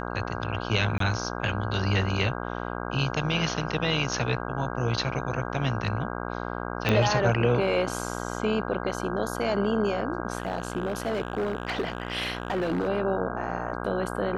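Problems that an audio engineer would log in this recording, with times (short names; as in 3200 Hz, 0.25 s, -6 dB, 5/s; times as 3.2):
buzz 60 Hz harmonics 27 -33 dBFS
0.98–1 gap 23 ms
6.89 pop -10 dBFS
10.38–12.89 clipped -23 dBFS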